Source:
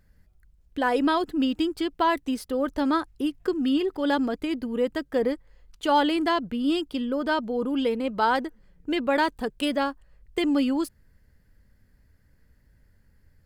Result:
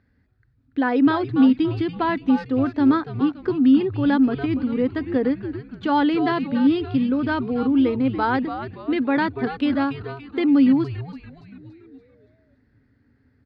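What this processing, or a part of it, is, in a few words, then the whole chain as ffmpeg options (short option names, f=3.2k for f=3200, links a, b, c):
frequency-shifting delay pedal into a guitar cabinet: -filter_complex "[0:a]asplit=7[a][b][c][d][e][f][g];[b]adelay=285,afreqshift=-150,volume=-9dB[h];[c]adelay=570,afreqshift=-300,volume=-15.2dB[i];[d]adelay=855,afreqshift=-450,volume=-21.4dB[j];[e]adelay=1140,afreqshift=-600,volume=-27.6dB[k];[f]adelay=1425,afreqshift=-750,volume=-33.8dB[l];[g]adelay=1710,afreqshift=-900,volume=-40dB[m];[a][h][i][j][k][l][m]amix=inputs=7:normalize=0,highpass=97,equalizer=f=110:t=q:w=4:g=6,equalizer=f=160:t=q:w=4:g=-10,equalizer=f=260:t=q:w=4:g=9,equalizer=f=590:t=q:w=4:g=-6,equalizer=f=990:t=q:w=4:g=-3,equalizer=f=3k:t=q:w=4:g=-7,lowpass=f=3.9k:w=0.5412,lowpass=f=3.9k:w=1.3066,volume=2dB"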